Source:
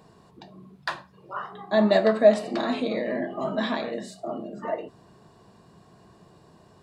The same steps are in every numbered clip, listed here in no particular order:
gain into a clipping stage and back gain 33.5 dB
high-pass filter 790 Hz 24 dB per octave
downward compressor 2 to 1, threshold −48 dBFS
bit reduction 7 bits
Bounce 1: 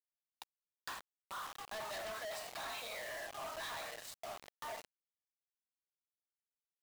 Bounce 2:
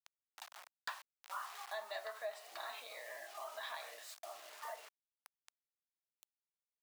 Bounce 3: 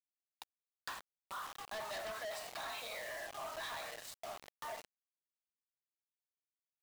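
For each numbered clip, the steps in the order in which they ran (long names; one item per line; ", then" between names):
high-pass filter, then gain into a clipping stage and back, then bit reduction, then downward compressor
bit reduction, then downward compressor, then high-pass filter, then gain into a clipping stage and back
high-pass filter, then bit reduction, then gain into a clipping stage and back, then downward compressor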